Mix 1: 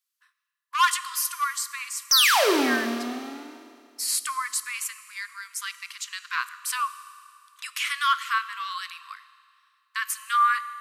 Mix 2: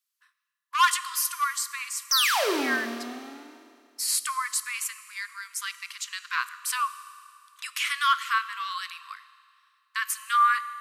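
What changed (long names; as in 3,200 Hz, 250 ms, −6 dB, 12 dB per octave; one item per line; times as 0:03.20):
background −4.5 dB
master: add parametric band 140 Hz −7 dB 0.93 octaves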